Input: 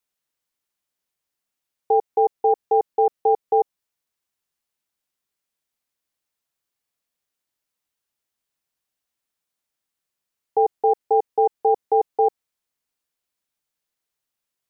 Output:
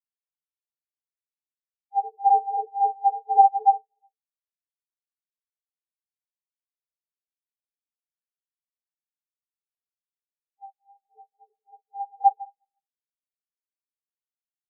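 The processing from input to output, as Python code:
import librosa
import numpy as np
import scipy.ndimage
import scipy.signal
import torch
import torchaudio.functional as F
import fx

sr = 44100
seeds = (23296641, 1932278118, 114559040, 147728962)

y = fx.reverse_delay(x, sr, ms=134, wet_db=-11)
y = scipy.signal.sosfilt(scipy.signal.butter(2, 1000.0, 'lowpass', fs=sr, output='sos'), y)
y = fx.level_steps(y, sr, step_db=22, at=(10.64, 11.85), fade=0.02)
y = fx.transient(y, sr, attack_db=-10, sustain_db=9)
y = fx.chorus_voices(y, sr, voices=6, hz=0.88, base_ms=13, depth_ms=3.3, mix_pct=65)
y = y + 10.0 ** (-12.0 / 20.0) * np.pad(y, (int(365 * sr / 1000.0), 0))[:len(y)]
y = fx.rev_double_slope(y, sr, seeds[0], early_s=0.22, late_s=1.8, knee_db=-18, drr_db=-5.5)
y = fx.spectral_expand(y, sr, expansion=4.0)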